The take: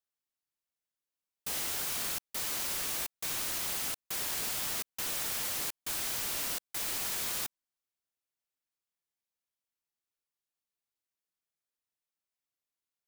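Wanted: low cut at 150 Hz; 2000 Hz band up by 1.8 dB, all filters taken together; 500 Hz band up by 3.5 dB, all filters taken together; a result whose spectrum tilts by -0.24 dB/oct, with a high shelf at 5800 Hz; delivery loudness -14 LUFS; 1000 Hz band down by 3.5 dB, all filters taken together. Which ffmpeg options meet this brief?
-af "highpass=150,equalizer=f=500:t=o:g=6.5,equalizer=f=1k:t=o:g=-8,equalizer=f=2k:t=o:g=4.5,highshelf=f=5.8k:g=-4,volume=21dB"

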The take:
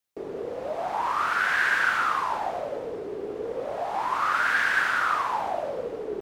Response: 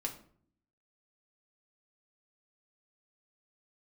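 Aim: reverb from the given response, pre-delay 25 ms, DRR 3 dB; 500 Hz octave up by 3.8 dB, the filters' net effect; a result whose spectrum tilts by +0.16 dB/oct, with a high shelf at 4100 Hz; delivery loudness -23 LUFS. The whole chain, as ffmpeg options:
-filter_complex "[0:a]equalizer=f=500:t=o:g=4.5,highshelf=f=4.1k:g=6.5,asplit=2[a][b];[1:a]atrim=start_sample=2205,adelay=25[c];[b][c]afir=irnorm=-1:irlink=0,volume=-3.5dB[d];[a][d]amix=inputs=2:normalize=0"

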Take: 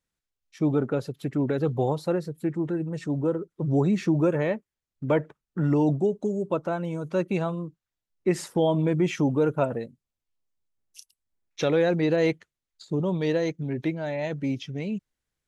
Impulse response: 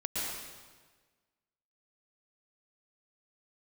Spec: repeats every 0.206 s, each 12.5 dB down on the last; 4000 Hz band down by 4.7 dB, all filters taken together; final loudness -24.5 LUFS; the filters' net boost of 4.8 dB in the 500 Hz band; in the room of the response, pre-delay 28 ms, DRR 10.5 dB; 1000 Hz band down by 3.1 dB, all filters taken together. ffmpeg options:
-filter_complex "[0:a]equalizer=f=500:t=o:g=7.5,equalizer=f=1k:t=o:g=-8.5,equalizer=f=4k:t=o:g=-5.5,aecho=1:1:206|412|618:0.237|0.0569|0.0137,asplit=2[a][b];[1:a]atrim=start_sample=2205,adelay=28[c];[b][c]afir=irnorm=-1:irlink=0,volume=-16dB[d];[a][d]amix=inputs=2:normalize=0,volume=-1.5dB"

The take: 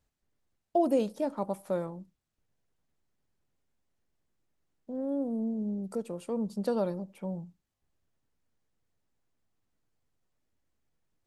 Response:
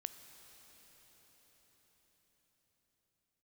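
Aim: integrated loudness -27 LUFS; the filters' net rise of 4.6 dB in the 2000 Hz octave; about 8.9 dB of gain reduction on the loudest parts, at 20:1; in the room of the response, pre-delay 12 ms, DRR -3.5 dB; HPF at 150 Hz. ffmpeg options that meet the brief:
-filter_complex "[0:a]highpass=150,equalizer=f=2k:t=o:g=6.5,acompressor=threshold=-29dB:ratio=20,asplit=2[a][b];[1:a]atrim=start_sample=2205,adelay=12[c];[b][c]afir=irnorm=-1:irlink=0,volume=6.5dB[d];[a][d]amix=inputs=2:normalize=0,volume=6.5dB"

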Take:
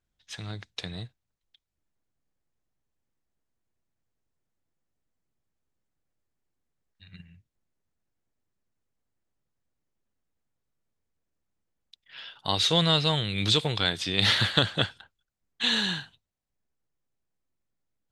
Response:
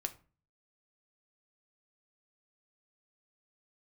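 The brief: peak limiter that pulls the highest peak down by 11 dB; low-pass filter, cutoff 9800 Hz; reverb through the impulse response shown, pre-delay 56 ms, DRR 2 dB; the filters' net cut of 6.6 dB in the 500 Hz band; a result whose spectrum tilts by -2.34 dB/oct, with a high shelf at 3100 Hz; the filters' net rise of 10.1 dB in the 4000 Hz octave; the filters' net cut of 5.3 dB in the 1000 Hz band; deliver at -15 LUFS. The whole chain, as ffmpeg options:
-filter_complex "[0:a]lowpass=9.8k,equalizer=f=500:t=o:g=-6.5,equalizer=f=1k:t=o:g=-6.5,highshelf=f=3.1k:g=6,equalizer=f=4k:t=o:g=8,alimiter=limit=-8.5dB:level=0:latency=1,asplit=2[a][b];[1:a]atrim=start_sample=2205,adelay=56[c];[b][c]afir=irnorm=-1:irlink=0,volume=-1.5dB[d];[a][d]amix=inputs=2:normalize=0,volume=2.5dB"

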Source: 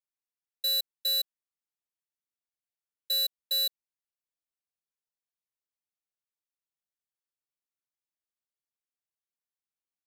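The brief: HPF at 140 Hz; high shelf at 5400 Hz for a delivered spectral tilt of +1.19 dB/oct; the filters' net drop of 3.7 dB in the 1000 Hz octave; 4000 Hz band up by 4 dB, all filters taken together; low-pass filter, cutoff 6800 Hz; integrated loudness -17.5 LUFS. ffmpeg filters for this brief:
-af "highpass=140,lowpass=6.8k,equalizer=f=1k:t=o:g=-6,equalizer=f=4k:t=o:g=6,highshelf=f=5.4k:g=-4,volume=7.5dB"

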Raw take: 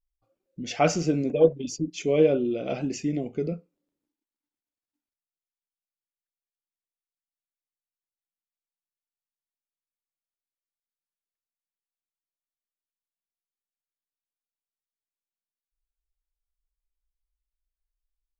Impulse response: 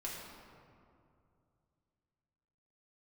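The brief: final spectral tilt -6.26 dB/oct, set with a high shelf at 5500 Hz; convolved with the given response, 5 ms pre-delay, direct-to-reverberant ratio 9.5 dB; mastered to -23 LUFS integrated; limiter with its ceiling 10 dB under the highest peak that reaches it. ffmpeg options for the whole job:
-filter_complex "[0:a]highshelf=f=5.5k:g=-3.5,alimiter=limit=-16dB:level=0:latency=1,asplit=2[a][b];[1:a]atrim=start_sample=2205,adelay=5[c];[b][c]afir=irnorm=-1:irlink=0,volume=-10dB[d];[a][d]amix=inputs=2:normalize=0,volume=5dB"

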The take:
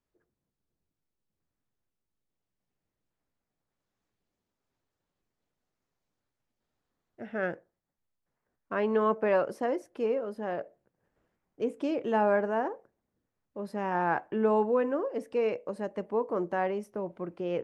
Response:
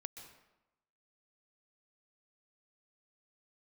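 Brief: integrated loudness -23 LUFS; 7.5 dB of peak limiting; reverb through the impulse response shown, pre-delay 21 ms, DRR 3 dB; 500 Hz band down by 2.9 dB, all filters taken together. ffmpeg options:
-filter_complex "[0:a]equalizer=f=500:t=o:g=-3.5,alimiter=limit=-24dB:level=0:latency=1,asplit=2[a][b];[1:a]atrim=start_sample=2205,adelay=21[c];[b][c]afir=irnorm=-1:irlink=0,volume=1dB[d];[a][d]amix=inputs=2:normalize=0,volume=10.5dB"

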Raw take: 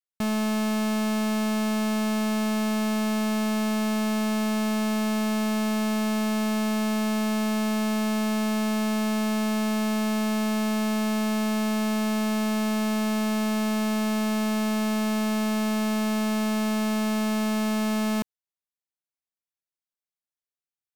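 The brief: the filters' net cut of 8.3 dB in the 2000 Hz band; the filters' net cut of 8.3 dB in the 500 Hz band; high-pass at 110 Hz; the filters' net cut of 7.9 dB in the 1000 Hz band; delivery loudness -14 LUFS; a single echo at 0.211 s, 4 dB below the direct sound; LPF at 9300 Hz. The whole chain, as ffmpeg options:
-af "highpass=110,lowpass=9.3k,equalizer=f=500:t=o:g=-9,equalizer=f=1k:t=o:g=-5,equalizer=f=2k:t=o:g=-8.5,aecho=1:1:211:0.631,volume=18dB"

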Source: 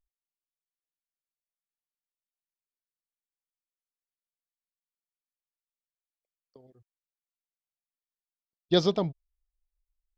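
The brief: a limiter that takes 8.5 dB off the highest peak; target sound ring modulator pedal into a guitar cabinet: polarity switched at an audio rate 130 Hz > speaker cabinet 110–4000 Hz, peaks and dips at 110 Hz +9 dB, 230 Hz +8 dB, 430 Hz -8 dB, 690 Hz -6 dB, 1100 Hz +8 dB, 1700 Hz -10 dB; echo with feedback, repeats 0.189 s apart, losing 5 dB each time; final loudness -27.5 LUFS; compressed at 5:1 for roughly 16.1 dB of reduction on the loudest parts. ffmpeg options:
-af "acompressor=threshold=-37dB:ratio=5,alimiter=level_in=10.5dB:limit=-24dB:level=0:latency=1,volume=-10.5dB,aecho=1:1:189|378|567|756|945|1134|1323:0.562|0.315|0.176|0.0988|0.0553|0.031|0.0173,aeval=exprs='val(0)*sgn(sin(2*PI*130*n/s))':c=same,highpass=110,equalizer=f=110:t=q:w=4:g=9,equalizer=f=230:t=q:w=4:g=8,equalizer=f=430:t=q:w=4:g=-8,equalizer=f=690:t=q:w=4:g=-6,equalizer=f=1.1k:t=q:w=4:g=8,equalizer=f=1.7k:t=q:w=4:g=-10,lowpass=f=4k:w=0.5412,lowpass=f=4k:w=1.3066,volume=20dB"

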